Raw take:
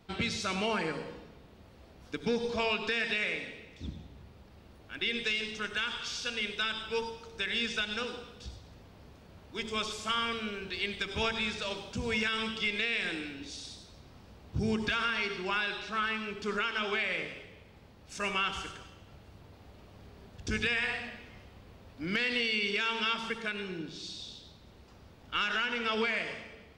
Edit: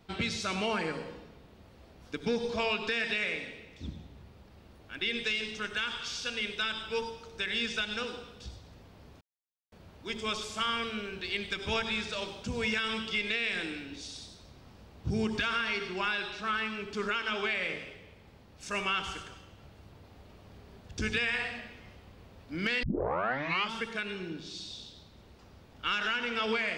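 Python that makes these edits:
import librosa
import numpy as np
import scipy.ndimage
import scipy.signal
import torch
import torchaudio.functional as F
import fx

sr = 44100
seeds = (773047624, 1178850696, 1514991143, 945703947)

y = fx.edit(x, sr, fx.insert_silence(at_s=9.21, length_s=0.51),
    fx.tape_start(start_s=22.32, length_s=0.89), tone=tone)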